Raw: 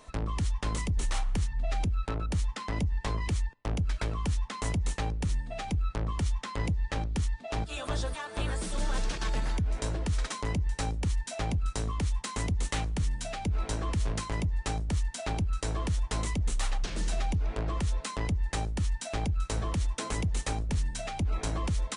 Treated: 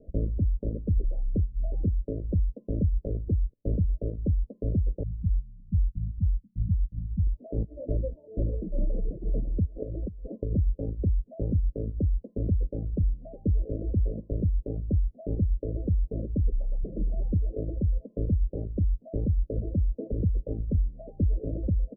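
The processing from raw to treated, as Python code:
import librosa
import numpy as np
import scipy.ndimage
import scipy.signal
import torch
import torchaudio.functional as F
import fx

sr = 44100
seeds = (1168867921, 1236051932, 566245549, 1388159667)

y = fx.cheby2_bandstop(x, sr, low_hz=360.0, high_hz=6900.0, order=4, stop_db=40, at=(5.03, 7.27))
y = fx.over_compress(y, sr, threshold_db=-34.0, ratio=-1.0, at=(9.65, 10.5), fade=0.02)
y = scipy.signal.sosfilt(scipy.signal.butter(12, 590.0, 'lowpass', fs=sr, output='sos'), y)
y = fx.dynamic_eq(y, sr, hz=150.0, q=4.8, threshold_db=-48.0, ratio=4.0, max_db=-5)
y = fx.dereverb_blind(y, sr, rt60_s=1.7)
y = y * librosa.db_to_amplitude(6.0)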